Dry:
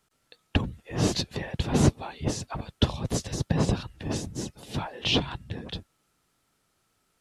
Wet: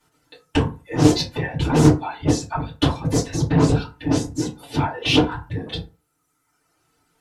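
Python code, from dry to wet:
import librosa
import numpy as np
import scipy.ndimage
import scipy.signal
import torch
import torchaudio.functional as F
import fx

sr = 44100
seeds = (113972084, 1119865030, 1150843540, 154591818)

y = fx.dereverb_blind(x, sr, rt60_s=1.3)
y = fx.fold_sine(y, sr, drive_db=7, ceiling_db=-8.0)
y = fx.rev_fdn(y, sr, rt60_s=0.32, lf_ratio=0.95, hf_ratio=0.55, size_ms=20.0, drr_db=-9.5)
y = fx.doppler_dist(y, sr, depth_ms=0.23)
y = y * 10.0 ** (-11.0 / 20.0)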